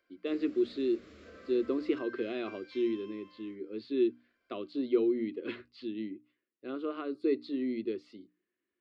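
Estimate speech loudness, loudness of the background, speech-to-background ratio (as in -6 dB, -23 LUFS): -34.0 LUFS, -53.0 LUFS, 19.0 dB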